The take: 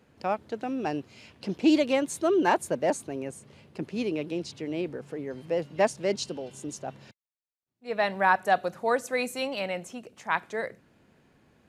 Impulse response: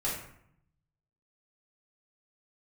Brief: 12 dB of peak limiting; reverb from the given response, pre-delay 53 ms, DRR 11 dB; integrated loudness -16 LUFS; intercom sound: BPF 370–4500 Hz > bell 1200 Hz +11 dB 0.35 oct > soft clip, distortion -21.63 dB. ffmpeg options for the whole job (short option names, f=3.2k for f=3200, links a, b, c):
-filter_complex "[0:a]alimiter=limit=-21dB:level=0:latency=1,asplit=2[a][b];[1:a]atrim=start_sample=2205,adelay=53[c];[b][c]afir=irnorm=-1:irlink=0,volume=-17dB[d];[a][d]amix=inputs=2:normalize=0,highpass=370,lowpass=4.5k,equalizer=f=1.2k:t=o:w=0.35:g=11,asoftclip=threshold=-19.5dB,volume=18.5dB"